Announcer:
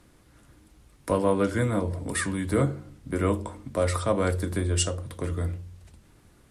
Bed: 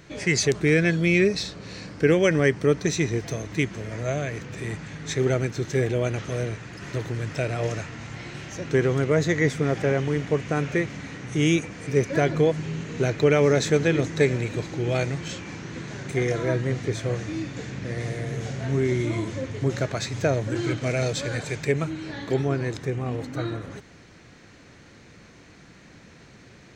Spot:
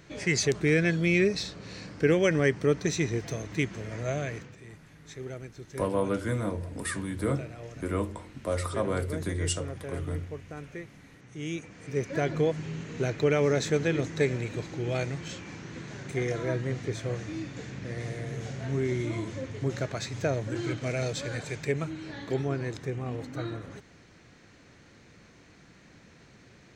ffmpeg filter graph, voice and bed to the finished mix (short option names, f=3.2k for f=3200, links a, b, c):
-filter_complex "[0:a]adelay=4700,volume=-5dB[a];[1:a]volume=7dB,afade=t=out:st=4.31:d=0.26:silence=0.237137,afade=t=in:st=11.36:d=1.01:silence=0.281838[b];[a][b]amix=inputs=2:normalize=0"